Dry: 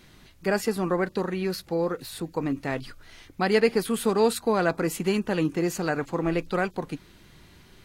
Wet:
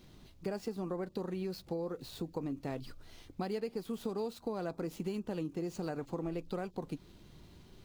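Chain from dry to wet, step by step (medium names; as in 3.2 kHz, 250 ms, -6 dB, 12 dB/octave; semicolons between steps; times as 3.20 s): median filter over 5 samples; peaking EQ 1.8 kHz -10.5 dB 1.4 oct; compression 6:1, threshold -32 dBFS, peak gain reduction 15 dB; trim -2.5 dB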